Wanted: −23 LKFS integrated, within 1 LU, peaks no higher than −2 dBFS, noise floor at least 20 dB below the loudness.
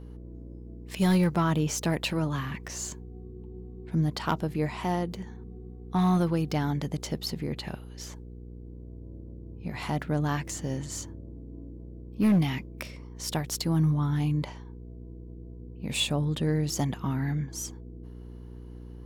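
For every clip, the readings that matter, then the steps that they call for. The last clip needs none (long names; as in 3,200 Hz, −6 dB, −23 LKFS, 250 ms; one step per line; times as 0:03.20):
share of clipped samples 0.5%; peaks flattened at −18.0 dBFS; mains hum 60 Hz; hum harmonics up to 480 Hz; level of the hum −40 dBFS; integrated loudness −29.0 LKFS; sample peak −18.0 dBFS; target loudness −23.0 LKFS
→ clipped peaks rebuilt −18 dBFS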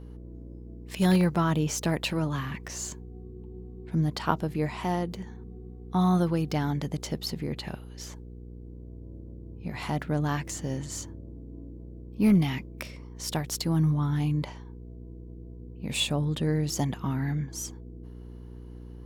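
share of clipped samples 0.0%; mains hum 60 Hz; hum harmonics up to 480 Hz; level of the hum −40 dBFS
→ hum removal 60 Hz, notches 8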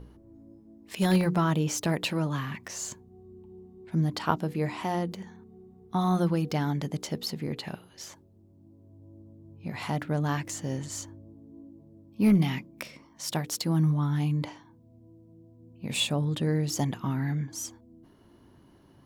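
mains hum none found; integrated loudness −29.0 LKFS; sample peak −10.0 dBFS; target loudness −23.0 LKFS
→ level +6 dB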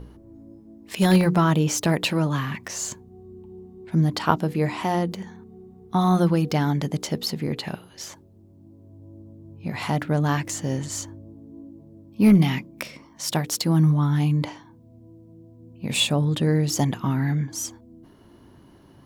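integrated loudness −23.0 LKFS; sample peak −4.0 dBFS; background noise floor −51 dBFS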